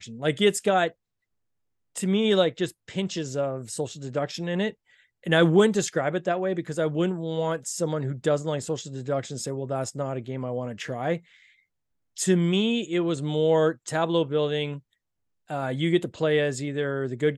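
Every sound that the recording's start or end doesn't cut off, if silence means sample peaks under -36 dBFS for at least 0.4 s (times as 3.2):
1.96–4.71
5.26–11.18
12.17–14.78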